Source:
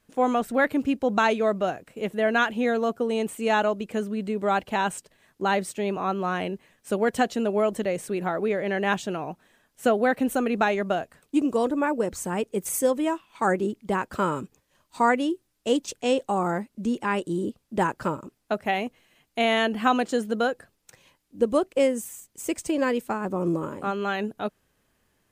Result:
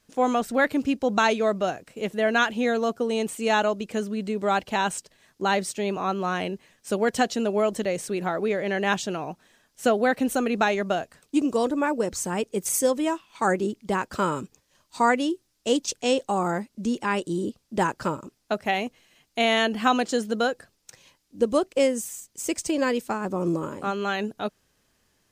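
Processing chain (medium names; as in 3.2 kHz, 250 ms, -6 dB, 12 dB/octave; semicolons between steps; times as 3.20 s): peaking EQ 5.4 kHz +8 dB 1.2 oct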